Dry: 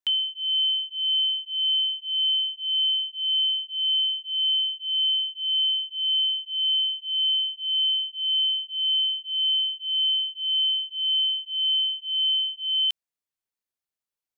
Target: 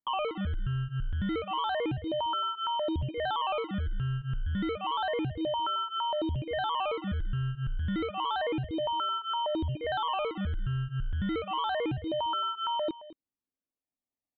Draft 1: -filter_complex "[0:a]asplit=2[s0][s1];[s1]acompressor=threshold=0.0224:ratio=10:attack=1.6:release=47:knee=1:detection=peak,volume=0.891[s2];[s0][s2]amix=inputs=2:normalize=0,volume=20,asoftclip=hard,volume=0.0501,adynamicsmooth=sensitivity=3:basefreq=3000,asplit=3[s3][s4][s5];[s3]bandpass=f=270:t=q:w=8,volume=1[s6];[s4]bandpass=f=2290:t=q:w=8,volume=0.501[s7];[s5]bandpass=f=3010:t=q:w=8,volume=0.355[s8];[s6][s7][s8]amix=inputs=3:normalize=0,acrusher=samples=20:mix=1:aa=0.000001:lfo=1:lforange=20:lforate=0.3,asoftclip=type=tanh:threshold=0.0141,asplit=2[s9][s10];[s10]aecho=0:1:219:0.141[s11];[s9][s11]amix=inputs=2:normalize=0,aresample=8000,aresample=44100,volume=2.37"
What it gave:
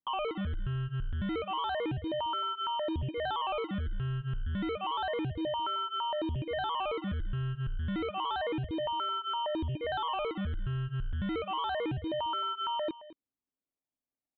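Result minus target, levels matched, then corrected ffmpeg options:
saturation: distortion +12 dB; compression: peak gain reduction -5.5 dB
-filter_complex "[0:a]asplit=2[s0][s1];[s1]acompressor=threshold=0.0112:ratio=10:attack=1.6:release=47:knee=1:detection=peak,volume=0.891[s2];[s0][s2]amix=inputs=2:normalize=0,volume=20,asoftclip=hard,volume=0.0501,adynamicsmooth=sensitivity=3:basefreq=3000,asplit=3[s3][s4][s5];[s3]bandpass=f=270:t=q:w=8,volume=1[s6];[s4]bandpass=f=2290:t=q:w=8,volume=0.501[s7];[s5]bandpass=f=3010:t=q:w=8,volume=0.355[s8];[s6][s7][s8]amix=inputs=3:normalize=0,acrusher=samples=20:mix=1:aa=0.000001:lfo=1:lforange=20:lforate=0.3,asoftclip=type=tanh:threshold=0.0335,asplit=2[s9][s10];[s10]aecho=0:1:219:0.141[s11];[s9][s11]amix=inputs=2:normalize=0,aresample=8000,aresample=44100,volume=2.37"

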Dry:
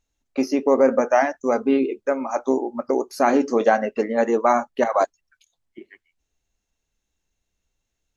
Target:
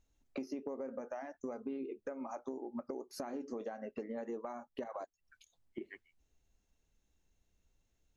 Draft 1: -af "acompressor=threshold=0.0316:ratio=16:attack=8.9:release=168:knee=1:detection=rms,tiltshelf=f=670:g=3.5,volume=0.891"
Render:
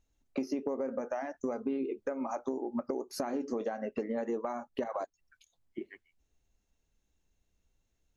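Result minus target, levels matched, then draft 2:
compression: peak gain reduction -7.5 dB
-af "acompressor=threshold=0.0126:ratio=16:attack=8.9:release=168:knee=1:detection=rms,tiltshelf=f=670:g=3.5,volume=0.891"

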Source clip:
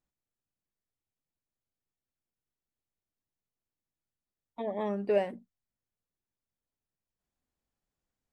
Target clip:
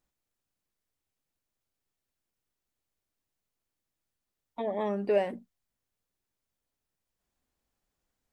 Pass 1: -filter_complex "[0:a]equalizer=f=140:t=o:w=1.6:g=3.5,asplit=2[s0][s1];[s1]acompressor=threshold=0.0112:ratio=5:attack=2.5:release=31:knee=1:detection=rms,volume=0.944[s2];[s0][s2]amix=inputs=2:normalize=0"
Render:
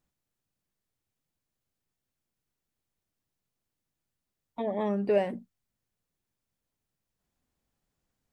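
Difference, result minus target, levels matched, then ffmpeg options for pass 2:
125 Hz band +3.5 dB
-filter_complex "[0:a]equalizer=f=140:t=o:w=1.6:g=-3.5,asplit=2[s0][s1];[s1]acompressor=threshold=0.0112:ratio=5:attack=2.5:release=31:knee=1:detection=rms,volume=0.944[s2];[s0][s2]amix=inputs=2:normalize=0"

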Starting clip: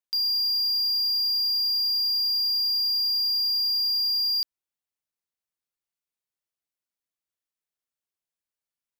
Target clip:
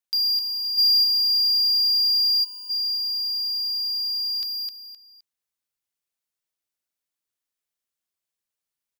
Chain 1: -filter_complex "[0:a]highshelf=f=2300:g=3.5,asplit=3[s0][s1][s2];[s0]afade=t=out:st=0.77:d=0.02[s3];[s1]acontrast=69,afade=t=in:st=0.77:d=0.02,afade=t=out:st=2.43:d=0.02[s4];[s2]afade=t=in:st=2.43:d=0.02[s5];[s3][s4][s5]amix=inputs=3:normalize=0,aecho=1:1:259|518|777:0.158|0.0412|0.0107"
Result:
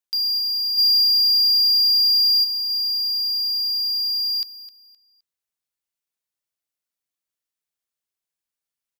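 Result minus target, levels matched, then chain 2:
echo-to-direct -10 dB
-filter_complex "[0:a]highshelf=f=2300:g=3.5,asplit=3[s0][s1][s2];[s0]afade=t=out:st=0.77:d=0.02[s3];[s1]acontrast=69,afade=t=in:st=0.77:d=0.02,afade=t=out:st=2.43:d=0.02[s4];[s2]afade=t=in:st=2.43:d=0.02[s5];[s3][s4][s5]amix=inputs=3:normalize=0,aecho=1:1:259|518|777:0.501|0.13|0.0339"

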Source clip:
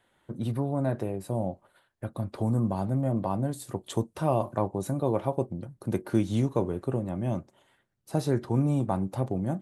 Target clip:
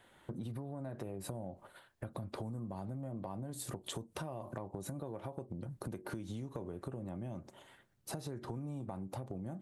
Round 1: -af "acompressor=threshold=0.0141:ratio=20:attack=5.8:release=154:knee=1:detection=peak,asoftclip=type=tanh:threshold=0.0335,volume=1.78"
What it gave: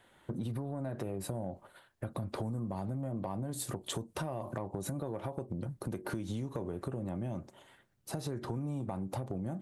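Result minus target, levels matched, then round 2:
compression: peak gain reduction -5.5 dB
-af "acompressor=threshold=0.00708:ratio=20:attack=5.8:release=154:knee=1:detection=peak,asoftclip=type=tanh:threshold=0.0335,volume=1.78"

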